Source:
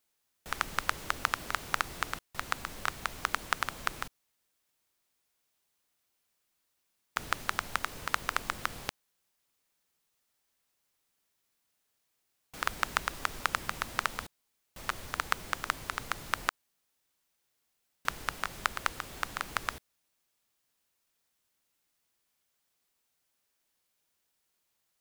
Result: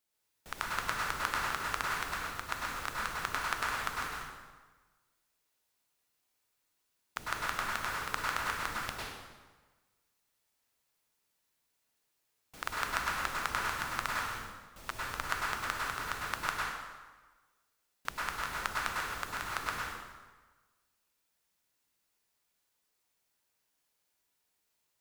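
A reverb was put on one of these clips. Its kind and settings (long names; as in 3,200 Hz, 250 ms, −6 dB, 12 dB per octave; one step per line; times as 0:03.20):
dense smooth reverb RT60 1.3 s, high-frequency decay 0.8×, pre-delay 90 ms, DRR −4.5 dB
level −6 dB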